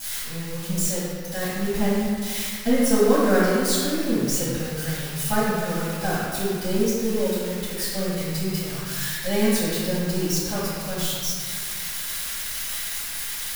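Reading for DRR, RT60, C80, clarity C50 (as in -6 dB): -13.5 dB, 1.9 s, -1.0 dB, -3.5 dB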